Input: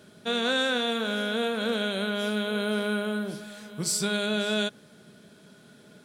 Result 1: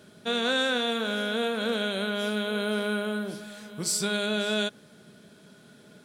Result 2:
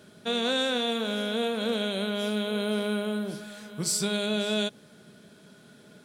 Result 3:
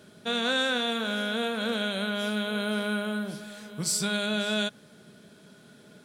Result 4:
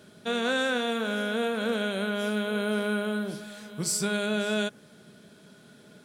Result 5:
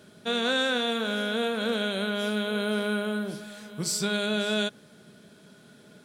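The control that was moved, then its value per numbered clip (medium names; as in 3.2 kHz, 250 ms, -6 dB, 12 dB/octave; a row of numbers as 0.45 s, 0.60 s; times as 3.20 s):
dynamic bell, frequency: 140 Hz, 1.5 kHz, 380 Hz, 3.8 kHz, 9.8 kHz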